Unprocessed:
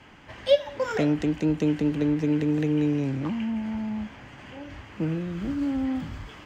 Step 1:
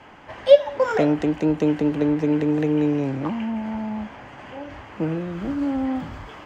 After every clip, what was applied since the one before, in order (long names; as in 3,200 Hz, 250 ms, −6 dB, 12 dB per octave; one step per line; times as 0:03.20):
parametric band 750 Hz +10 dB 2.3 octaves
level −1 dB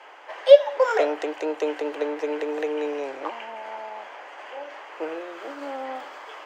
inverse Chebyshev high-pass filter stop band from 210 Hz, stop band 40 dB
level +1 dB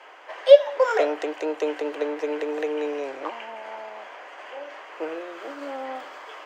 notch filter 850 Hz, Q 16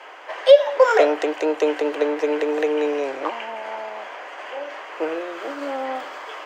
boost into a limiter +7 dB
level −1 dB